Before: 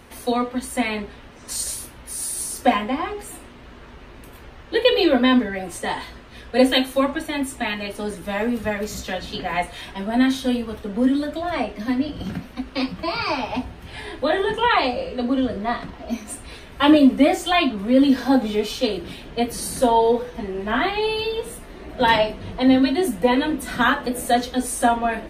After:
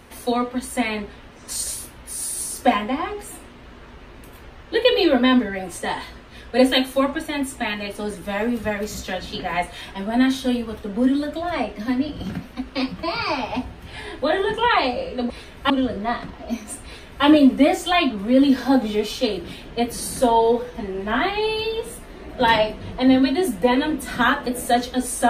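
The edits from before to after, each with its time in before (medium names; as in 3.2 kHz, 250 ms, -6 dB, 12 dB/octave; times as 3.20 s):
16.45–16.85 s: copy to 15.30 s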